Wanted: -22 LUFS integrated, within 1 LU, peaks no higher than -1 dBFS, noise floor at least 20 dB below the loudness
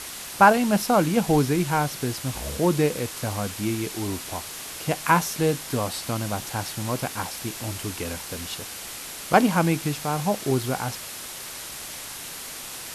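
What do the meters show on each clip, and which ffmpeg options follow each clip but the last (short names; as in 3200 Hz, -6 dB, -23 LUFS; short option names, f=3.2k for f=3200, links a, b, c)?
noise floor -37 dBFS; noise floor target -46 dBFS; loudness -25.5 LUFS; peak -3.0 dBFS; loudness target -22.0 LUFS
-> -af "afftdn=nr=9:nf=-37"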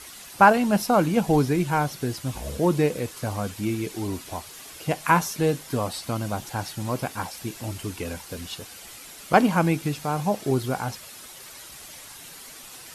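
noise floor -44 dBFS; noise floor target -45 dBFS
-> -af "afftdn=nr=6:nf=-44"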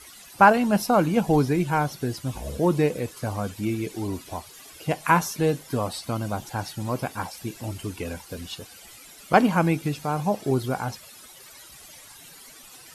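noise floor -47 dBFS; loudness -25.0 LUFS; peak -3.0 dBFS; loudness target -22.0 LUFS
-> -af "volume=3dB,alimiter=limit=-1dB:level=0:latency=1"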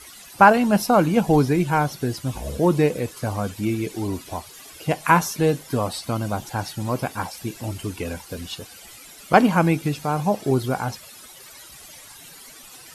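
loudness -22.0 LUFS; peak -1.0 dBFS; noise floor -44 dBFS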